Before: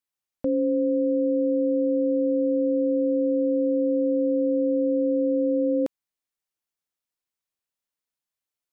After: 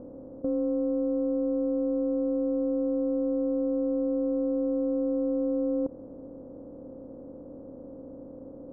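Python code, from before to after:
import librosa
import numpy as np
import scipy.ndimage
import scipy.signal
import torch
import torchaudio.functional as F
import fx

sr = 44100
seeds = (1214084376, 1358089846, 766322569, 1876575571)

p1 = fx.bin_compress(x, sr, power=0.2)
p2 = np.clip(10.0 ** (24.0 / 20.0) * p1, -1.0, 1.0) / 10.0 ** (24.0 / 20.0)
p3 = p1 + F.gain(torch.from_numpy(p2), -4.0).numpy()
p4 = scipy.signal.sosfilt(scipy.signal.bessel(8, 670.0, 'lowpass', norm='mag', fs=sr, output='sos'), p3)
y = F.gain(torch.from_numpy(p4), -6.5).numpy()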